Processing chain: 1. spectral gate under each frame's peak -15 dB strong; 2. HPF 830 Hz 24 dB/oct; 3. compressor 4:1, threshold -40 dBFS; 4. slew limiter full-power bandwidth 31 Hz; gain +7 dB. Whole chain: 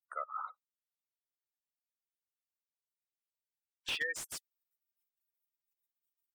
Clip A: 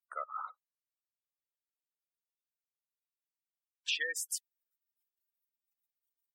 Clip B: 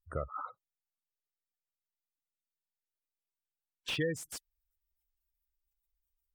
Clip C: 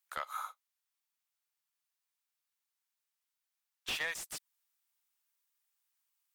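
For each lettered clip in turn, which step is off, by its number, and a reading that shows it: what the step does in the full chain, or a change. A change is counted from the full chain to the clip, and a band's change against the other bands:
4, distortion -5 dB; 2, momentary loudness spread change +1 LU; 1, 125 Hz band +2.0 dB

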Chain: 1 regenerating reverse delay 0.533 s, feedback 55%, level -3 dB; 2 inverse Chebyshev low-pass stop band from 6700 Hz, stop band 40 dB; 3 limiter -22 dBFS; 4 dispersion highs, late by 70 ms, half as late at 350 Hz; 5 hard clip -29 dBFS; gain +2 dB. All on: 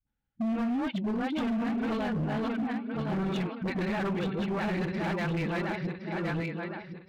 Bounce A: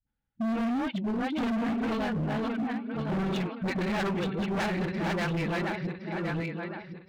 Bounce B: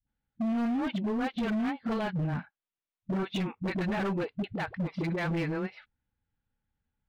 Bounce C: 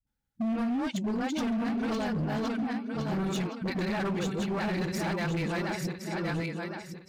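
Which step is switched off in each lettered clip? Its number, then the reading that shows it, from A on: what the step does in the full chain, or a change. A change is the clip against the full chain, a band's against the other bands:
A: 3, mean gain reduction 2.0 dB; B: 1, crest factor change +1.5 dB; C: 2, 4 kHz band +3.0 dB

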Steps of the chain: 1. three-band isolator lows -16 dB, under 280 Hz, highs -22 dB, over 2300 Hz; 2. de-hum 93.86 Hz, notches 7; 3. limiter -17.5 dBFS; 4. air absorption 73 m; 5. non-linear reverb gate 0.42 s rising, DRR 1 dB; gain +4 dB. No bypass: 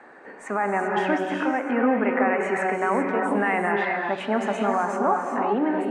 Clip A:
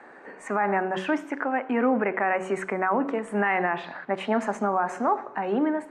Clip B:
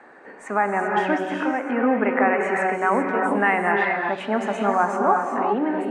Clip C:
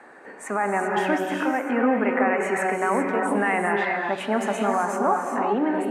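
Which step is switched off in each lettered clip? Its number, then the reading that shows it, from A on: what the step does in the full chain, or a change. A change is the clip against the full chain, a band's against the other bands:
5, momentary loudness spread change +3 LU; 3, momentary loudness spread change +1 LU; 4, 8 kHz band +7.0 dB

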